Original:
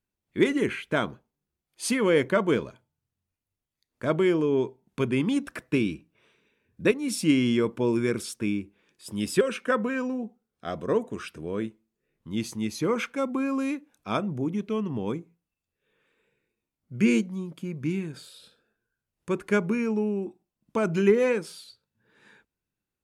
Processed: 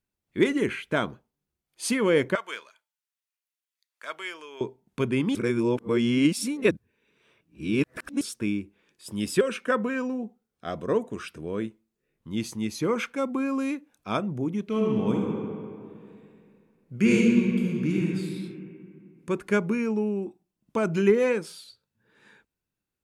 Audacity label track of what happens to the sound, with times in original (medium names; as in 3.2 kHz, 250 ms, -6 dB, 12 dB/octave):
2.350000	4.610000	high-pass 1.4 kHz
5.350000	8.210000	reverse
14.630000	18.050000	reverb throw, RT60 2.4 s, DRR -2 dB